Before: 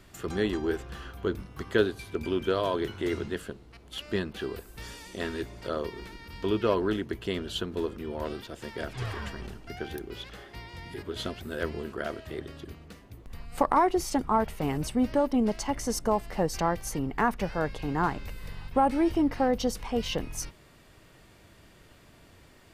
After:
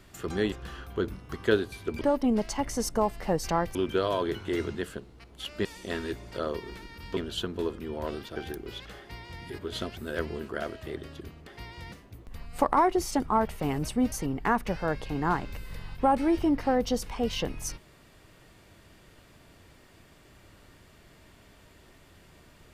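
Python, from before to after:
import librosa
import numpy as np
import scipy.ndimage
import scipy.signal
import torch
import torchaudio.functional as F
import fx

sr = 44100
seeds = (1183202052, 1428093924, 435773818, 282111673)

y = fx.edit(x, sr, fx.cut(start_s=0.52, length_s=0.27),
    fx.cut(start_s=4.18, length_s=0.77),
    fx.cut(start_s=6.47, length_s=0.88),
    fx.cut(start_s=8.54, length_s=1.26),
    fx.duplicate(start_s=10.43, length_s=0.45, to_s=12.91),
    fx.move(start_s=15.11, length_s=1.74, to_s=2.28), tone=tone)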